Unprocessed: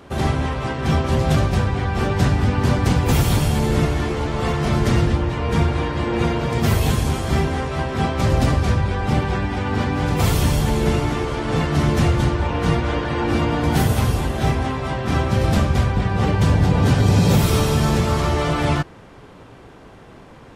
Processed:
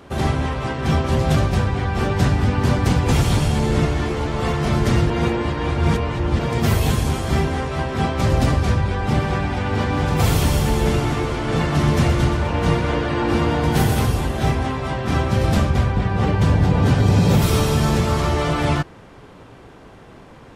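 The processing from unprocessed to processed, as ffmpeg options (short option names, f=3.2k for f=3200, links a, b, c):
-filter_complex "[0:a]asettb=1/sr,asplit=3[a][b][c];[a]atrim=end=3.004[d];[b]atrim=start=3:end=4.06,asetpts=PTS-STARTPTS,afade=t=in:d=0.004:c=qsin,afade=t=out:st=1.056:d=0.004:c=qsin,lowpass=9.5k[e];[c]atrim=start=4.056[f];[d][e]acrossfade=d=0.004:c1=hsin:c2=qsin[g];[g][f]acrossfade=d=0.004:c1=qsin:c2=hsin,asettb=1/sr,asplit=3[h][i][j];[h]atrim=end=8.994[k];[i]atrim=start=8.99:end=14.06,asetpts=PTS-STARTPTS,afade=t=in:d=0.004:c=qsin,afade=t=out:st=5.066:d=0.004:c=qsin,aecho=1:1:124|248|372|496|620:0.398|0.187|0.0879|0.0413|0.0194,atrim=end_sample=223587[l];[j]atrim=start=14.056[m];[k][l]acrossfade=d=0.004:c1=hsin:c2=qsin[n];[n][m]acrossfade=d=0.004:c1=qsin:c2=hsin,asettb=1/sr,asplit=3[o][p][q];[o]atrim=end=15.704[r];[p]atrim=start=15.7:end=17.42,asetpts=PTS-STARTPTS,afade=t=in:d=0.004:c=qsin,afade=t=out:st=1.716:d=0.004:c=qsin,highshelf=f=4.3k:g=-5[s];[q]atrim=start=17.416[t];[r][s]acrossfade=d=0.004:c1=hsin:c2=qsin[u];[u][t]acrossfade=d=0.004:c1=qsin:c2=hsin,asplit=3[v][w][x];[v]atrim=end=5.102[y];[w]atrim=start=5.098:end=6.392,asetpts=PTS-STARTPTS,areverse[z];[x]atrim=start=6.388[aa];[y][z]acrossfade=d=0.004:c1=hsin:c2=hsin[ab];[ab][aa]acrossfade=d=0.004:c1=hsin:c2=hsin"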